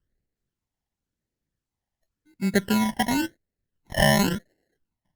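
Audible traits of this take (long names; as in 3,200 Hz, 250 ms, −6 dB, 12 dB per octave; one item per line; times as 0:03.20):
aliases and images of a low sample rate 1,200 Hz, jitter 0%
phaser sweep stages 12, 0.93 Hz, lowest notch 430–1,100 Hz
Opus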